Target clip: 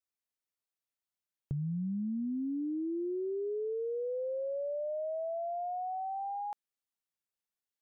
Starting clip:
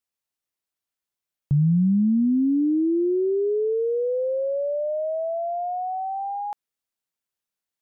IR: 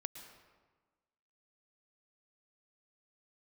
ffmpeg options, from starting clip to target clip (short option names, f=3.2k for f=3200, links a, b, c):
-af "acompressor=threshold=-26dB:ratio=6,volume=-7.5dB"